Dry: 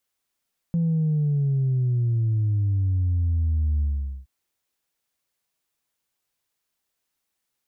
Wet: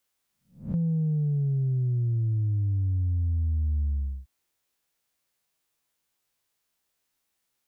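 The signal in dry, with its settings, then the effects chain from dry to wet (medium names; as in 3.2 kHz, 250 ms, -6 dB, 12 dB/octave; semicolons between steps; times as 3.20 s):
sub drop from 170 Hz, over 3.52 s, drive 0 dB, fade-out 0.45 s, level -19.5 dB
reverse spectral sustain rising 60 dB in 0.36 s; compression, threshold -24 dBFS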